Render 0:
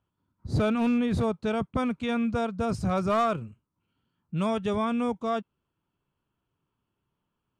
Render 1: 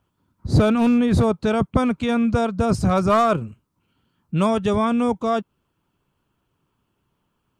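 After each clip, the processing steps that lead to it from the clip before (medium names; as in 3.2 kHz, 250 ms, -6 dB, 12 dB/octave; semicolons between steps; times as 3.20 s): harmonic-percussive split percussive +4 dB; dynamic bell 2.6 kHz, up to -4 dB, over -42 dBFS, Q 0.8; trim +7.5 dB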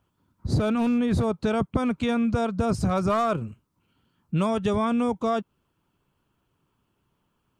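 compression, threshold -19 dBFS, peak gain reduction 8 dB; trim -1 dB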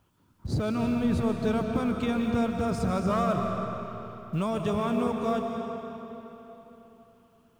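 companding laws mixed up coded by mu; on a send at -2.5 dB: reverberation RT60 3.6 s, pre-delay 100 ms; on the sum: trim -5.5 dB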